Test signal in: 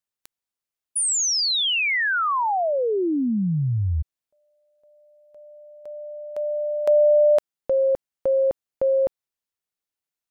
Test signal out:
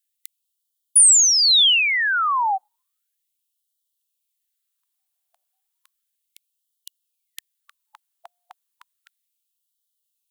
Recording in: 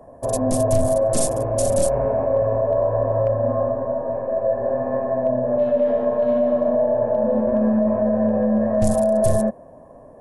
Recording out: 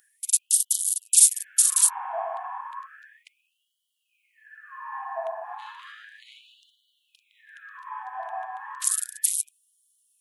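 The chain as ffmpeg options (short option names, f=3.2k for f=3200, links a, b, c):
-af "aexciter=amount=2.4:drive=2.7:freq=3k,afftfilt=real='re*gte(b*sr/1024,670*pow(2900/670,0.5+0.5*sin(2*PI*0.33*pts/sr)))':imag='im*gte(b*sr/1024,670*pow(2900/670,0.5+0.5*sin(2*PI*0.33*pts/sr)))':win_size=1024:overlap=0.75,volume=2dB"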